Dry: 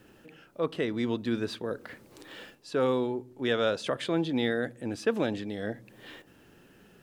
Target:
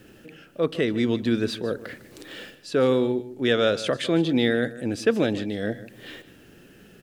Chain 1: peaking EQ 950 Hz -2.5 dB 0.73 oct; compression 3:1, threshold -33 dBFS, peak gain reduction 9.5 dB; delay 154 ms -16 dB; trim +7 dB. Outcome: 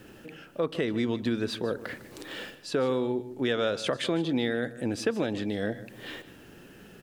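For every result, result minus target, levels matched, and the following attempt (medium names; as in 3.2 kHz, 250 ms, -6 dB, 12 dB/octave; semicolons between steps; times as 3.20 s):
compression: peak gain reduction +9.5 dB; 1 kHz band +3.0 dB
peaking EQ 950 Hz -2.5 dB 0.73 oct; delay 154 ms -16 dB; trim +7 dB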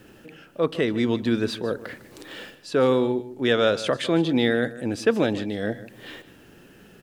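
1 kHz band +2.5 dB
peaking EQ 950 Hz -8.5 dB 0.73 oct; delay 154 ms -16 dB; trim +7 dB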